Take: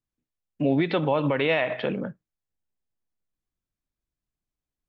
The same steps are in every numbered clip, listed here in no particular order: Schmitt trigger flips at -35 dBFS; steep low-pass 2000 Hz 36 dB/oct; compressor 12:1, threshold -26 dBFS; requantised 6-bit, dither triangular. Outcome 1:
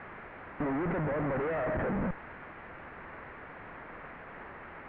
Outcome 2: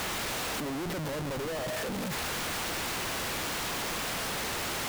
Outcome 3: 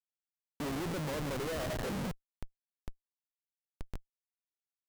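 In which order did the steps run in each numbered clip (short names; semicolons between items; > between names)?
Schmitt trigger > requantised > compressor > steep low-pass; steep low-pass > requantised > compressor > Schmitt trigger; compressor > requantised > steep low-pass > Schmitt trigger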